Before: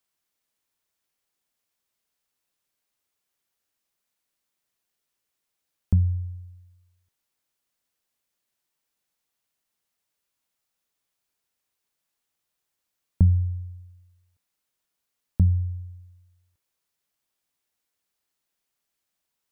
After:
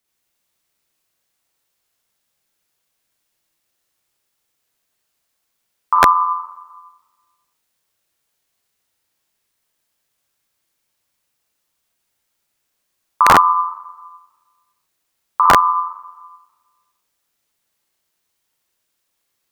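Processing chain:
four-comb reverb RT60 1.4 s, combs from 31 ms, DRR −4 dB
wrap-around overflow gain 7.5 dB
ring modulation 1,100 Hz
level +6.5 dB

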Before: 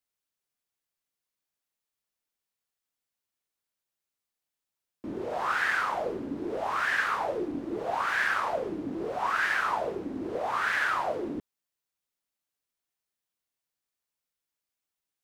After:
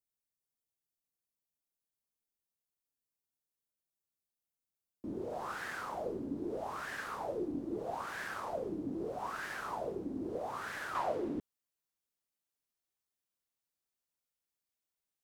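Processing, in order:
parametric band 2,000 Hz −13.5 dB 2.7 octaves, from 0:10.95 −3.5 dB
level −2.5 dB

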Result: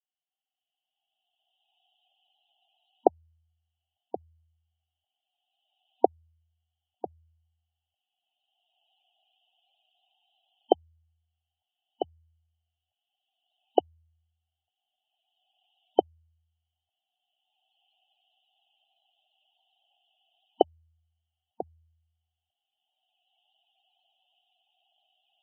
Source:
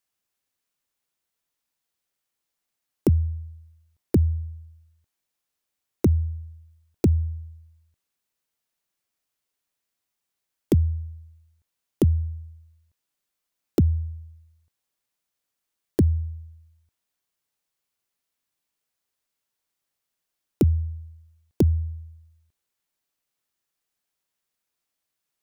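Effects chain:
camcorder AGC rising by 17 dB per second
pair of resonant band-passes 1,500 Hz, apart 2 octaves
spectral peaks only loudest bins 32
level −4.5 dB

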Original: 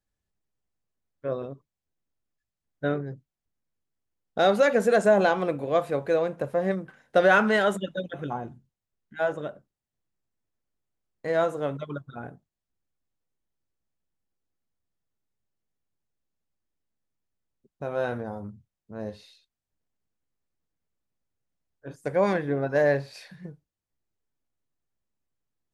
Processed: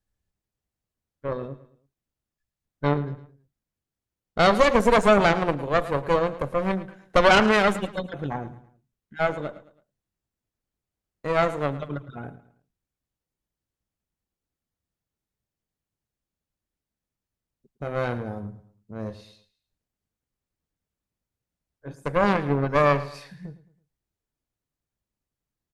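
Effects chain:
low-shelf EQ 150 Hz +6 dB
harmonic generator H 4 −8 dB, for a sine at −8 dBFS
repeating echo 109 ms, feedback 39%, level −16 dB

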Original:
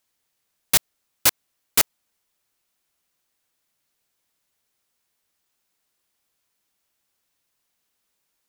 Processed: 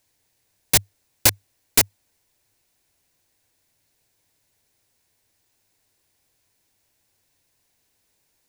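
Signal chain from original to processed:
thirty-one-band graphic EQ 100 Hz +8 dB, 200 Hz −6 dB, 1,250 Hz −9 dB, 3,150 Hz −4 dB, 16,000 Hz −5 dB
brickwall limiter −9 dBFS, peak gain reduction 6.5 dB
low-shelf EQ 360 Hz +5.5 dB
level +6.5 dB

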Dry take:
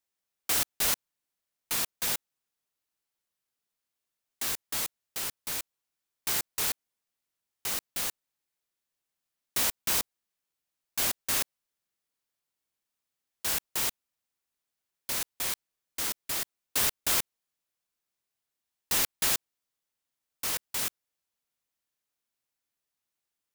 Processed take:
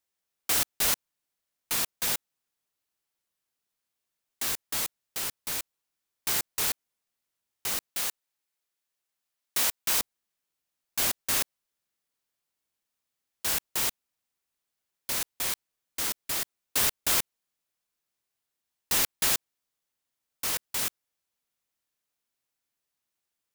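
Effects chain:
0:07.89–0:10.00: low-shelf EQ 330 Hz −8 dB
level +1.5 dB

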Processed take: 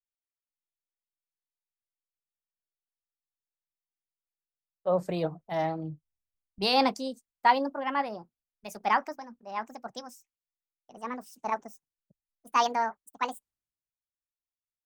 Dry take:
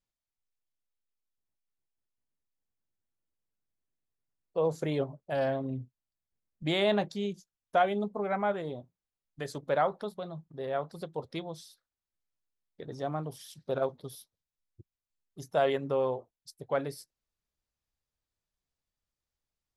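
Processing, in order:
gliding playback speed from 75% → 191%
multiband upward and downward expander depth 70%

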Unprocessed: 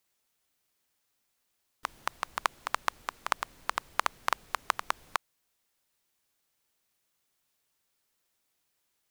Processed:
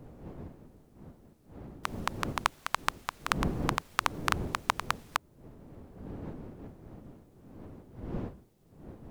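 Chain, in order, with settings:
gain on one half-wave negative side −3 dB
wind on the microphone 290 Hz −43 dBFS
pitch modulation by a square or saw wave saw up 3 Hz, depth 160 cents
level +1.5 dB

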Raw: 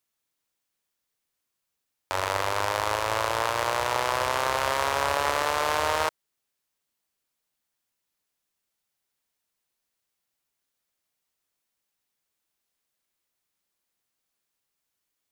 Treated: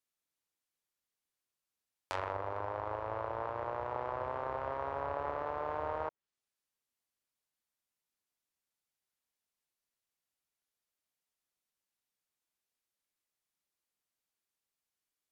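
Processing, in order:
treble cut that deepens with the level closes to 960 Hz, closed at −22.5 dBFS
level −8.5 dB

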